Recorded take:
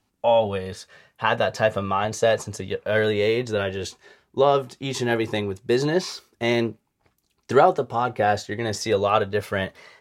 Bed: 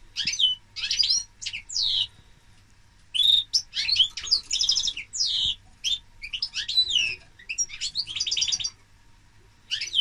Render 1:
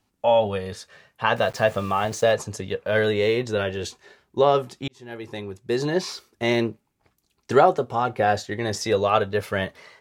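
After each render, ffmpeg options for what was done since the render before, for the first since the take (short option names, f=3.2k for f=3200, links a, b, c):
-filter_complex "[0:a]asettb=1/sr,asplit=3[a][b][c];[a]atrim=end=1.364[d];[b]atrim=start=1.36:end=2.32,asetpts=PTS-STARTPTS,afade=t=in:d=0.004:c=qsin,afade=t=out:st=0.956:d=0.004:c=qsin,aeval=exprs='val(0)*gte(abs(val(0)),0.0112)':c=same[e];[c]atrim=start=2.316[f];[d][e]acrossfade=d=0.004:c1=hsin:c2=qsin[g];[g][f]acrossfade=d=0.004:c1=qsin:c2=hsin,asplit=2[h][i];[h]atrim=end=4.88,asetpts=PTS-STARTPTS,afade=t=out:st=4.876:d=0.004:c=hsin[j];[i]atrim=start=4.88,asetpts=PTS-STARTPTS,afade=t=in:d=1.26[k];[j][k]concat=n=2:v=0:a=1"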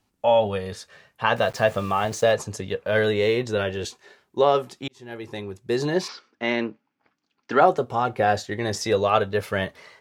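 -filter_complex "[0:a]asettb=1/sr,asplit=3[a][b][c];[a]atrim=end=3.854[d];[b]atrim=start=3.85:end=4.97,asetpts=PTS-STARTPTS,afade=t=in:d=0.004:c=qsin,afade=t=out:st=1.116:d=0.004:c=qsin,highpass=f=190:p=1[e];[c]atrim=start=4.966[f];[d][e]acrossfade=d=0.004:c1=hsin:c2=qsin[g];[g][f]acrossfade=d=0.004:c1=qsin:c2=hsin,asplit=3[h][i][j];[h]afade=t=out:st=6.07:d=0.02[k];[i]highpass=250,equalizer=f=270:t=q:w=4:g=6,equalizer=f=380:t=q:w=4:g=-8,equalizer=f=650:t=q:w=4:g=-3,equalizer=f=1.5k:t=q:w=4:g=5,equalizer=f=3.9k:t=q:w=4:g=-6,lowpass=f=4.8k:w=0.5412,lowpass=f=4.8k:w=1.3066,afade=t=in:st=6.07:d=0.02,afade=t=out:st=7.6:d=0.02[l];[j]afade=t=in:st=7.6:d=0.02[m];[k][l][m]amix=inputs=3:normalize=0"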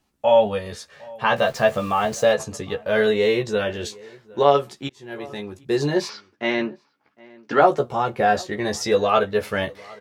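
-filter_complex "[0:a]asplit=2[a][b];[b]adelay=14,volume=-3.5dB[c];[a][c]amix=inputs=2:normalize=0,asplit=2[d][e];[e]adelay=758,volume=-23dB,highshelf=f=4k:g=-17.1[f];[d][f]amix=inputs=2:normalize=0"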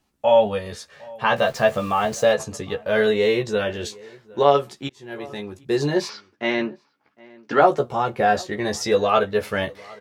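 -af anull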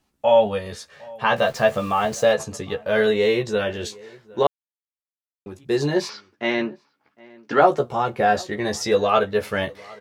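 -filter_complex "[0:a]asplit=3[a][b][c];[a]atrim=end=4.47,asetpts=PTS-STARTPTS,afade=t=out:st=4.466:d=0.004:c=hsin[d];[b]atrim=start=4.47:end=5.46,asetpts=PTS-STARTPTS,volume=0[e];[c]atrim=start=5.46,asetpts=PTS-STARTPTS,afade=t=in:d=0.004:c=hsin[f];[d][e][f]concat=n=3:v=0:a=1"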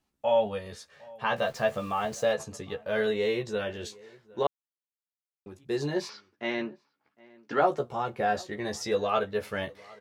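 -af "volume=-8.5dB"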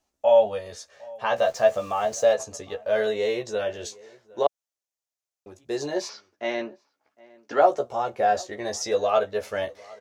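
-af "equalizer=f=160:t=o:w=0.67:g=-11,equalizer=f=630:t=o:w=0.67:g=9,equalizer=f=6.3k:t=o:w=0.67:g=9"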